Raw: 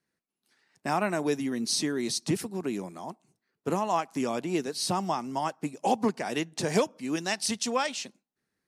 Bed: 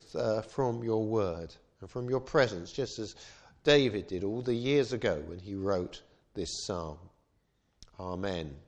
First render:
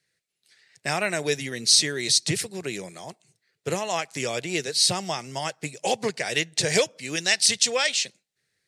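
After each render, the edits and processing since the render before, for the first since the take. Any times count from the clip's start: ten-band EQ 125 Hz +9 dB, 250 Hz -11 dB, 500 Hz +7 dB, 1000 Hz -8 dB, 2000 Hz +10 dB, 4000 Hz +9 dB, 8000 Hz +10 dB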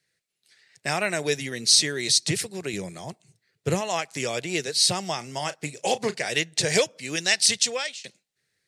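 2.73–3.81 bell 79 Hz +10 dB 2.9 oct; 5.17–6.29 doubler 34 ms -14 dB; 7.56–8.04 fade out, to -23.5 dB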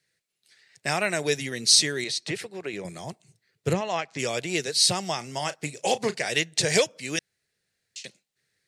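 2.04–2.85 tone controls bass -10 dB, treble -14 dB; 3.73–4.19 air absorption 140 m; 7.19–7.96 room tone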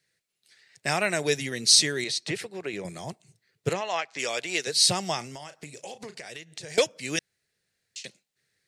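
3.69–4.67 weighting filter A; 5.25–6.78 compressor 8:1, threshold -37 dBFS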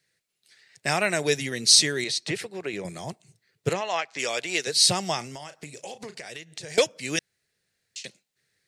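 gain +1.5 dB

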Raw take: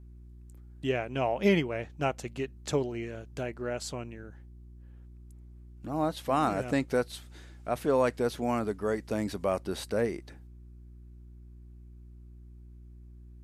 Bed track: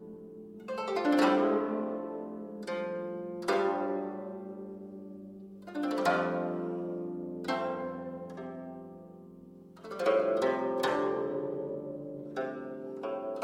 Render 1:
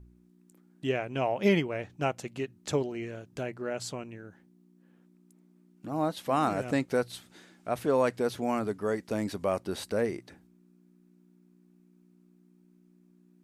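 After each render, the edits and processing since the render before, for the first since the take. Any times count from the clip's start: de-hum 60 Hz, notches 2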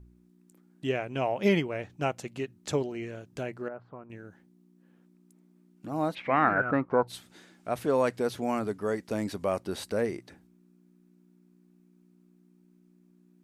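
3.68–4.1 ladder low-pass 1500 Hz, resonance 40%; 6.14–7.07 synth low-pass 2500 Hz -> 900 Hz, resonance Q 9.7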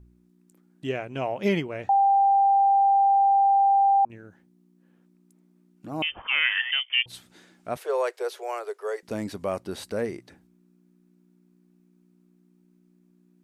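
1.89–4.05 bleep 791 Hz -16 dBFS; 6.02–7.06 inverted band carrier 3300 Hz; 7.77–9.03 steep high-pass 370 Hz 96 dB/oct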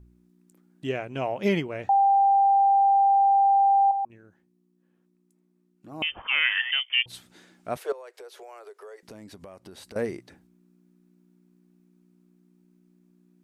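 3.91–6.02 resonator 370 Hz, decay 0.17 s, harmonics odd; 7.92–9.96 compressor, threshold -42 dBFS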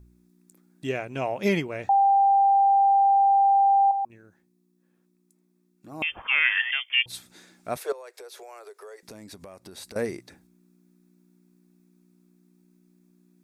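high shelf 3200 Hz +7.5 dB; notch 3000 Hz, Q 9.1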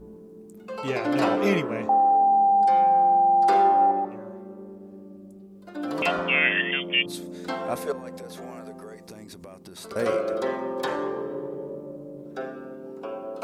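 add bed track +1.5 dB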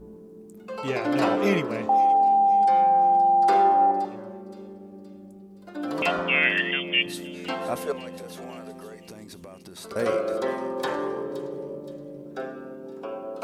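thin delay 0.521 s, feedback 48%, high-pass 3600 Hz, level -12 dB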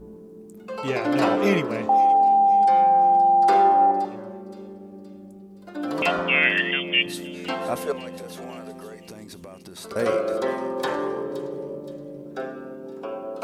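gain +2 dB

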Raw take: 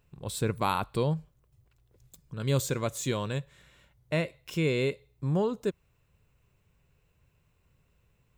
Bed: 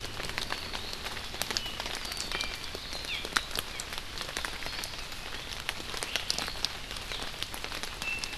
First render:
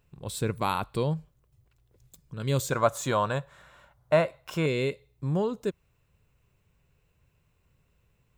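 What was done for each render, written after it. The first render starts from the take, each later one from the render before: 2.72–4.66 band shelf 950 Hz +12 dB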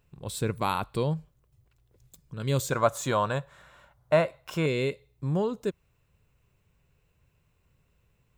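nothing audible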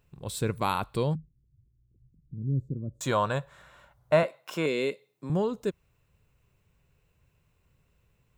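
1.15–3.01 inverse Chebyshev low-pass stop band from 780 Hz, stop band 50 dB; 4.23–5.3 HPF 190 Hz 24 dB/oct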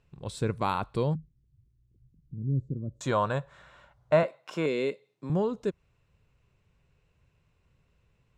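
LPF 6200 Hz 12 dB/oct; dynamic EQ 3200 Hz, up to -4 dB, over -47 dBFS, Q 0.81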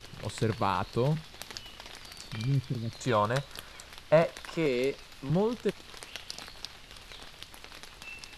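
add bed -10 dB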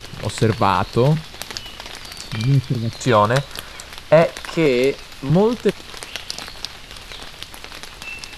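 gain +12 dB; limiter -3 dBFS, peak gain reduction 3 dB

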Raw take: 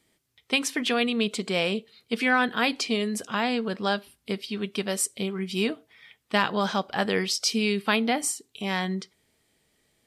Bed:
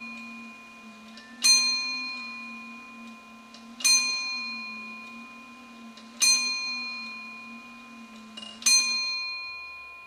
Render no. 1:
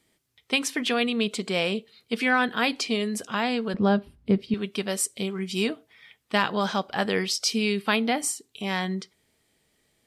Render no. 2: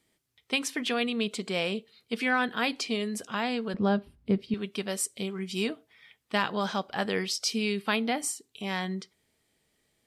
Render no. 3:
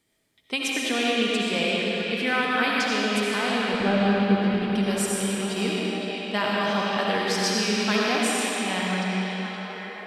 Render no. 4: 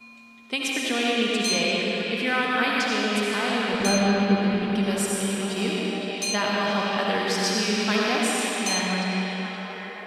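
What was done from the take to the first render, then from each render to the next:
3.74–4.54 tilt -4.5 dB/oct; 5.16–5.69 bell 7000 Hz +6 dB 0.78 oct
gain -4 dB
delay with a stepping band-pass 0.519 s, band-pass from 3100 Hz, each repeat -0.7 oct, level -3.5 dB; digital reverb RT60 3.5 s, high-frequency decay 0.85×, pre-delay 40 ms, DRR -4.5 dB
add bed -8 dB

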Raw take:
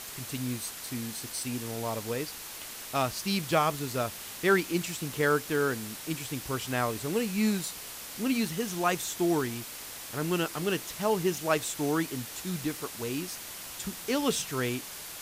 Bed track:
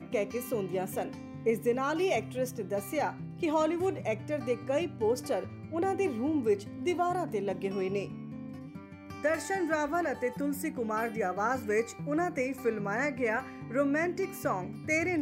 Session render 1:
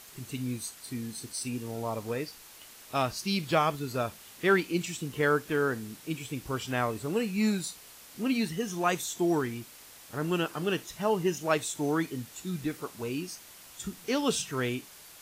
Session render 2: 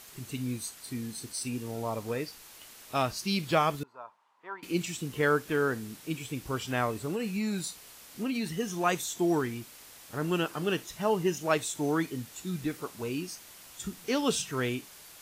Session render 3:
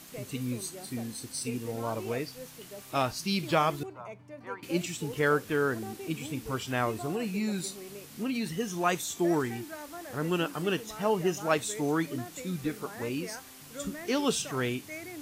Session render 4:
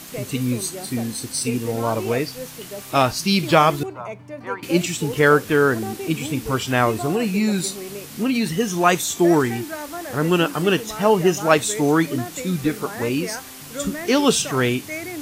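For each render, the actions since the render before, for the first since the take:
noise print and reduce 9 dB
3.83–4.63 band-pass 970 Hz, Q 7; 7.01–8.5 compressor, threshold -27 dBFS
add bed track -13 dB
gain +11 dB

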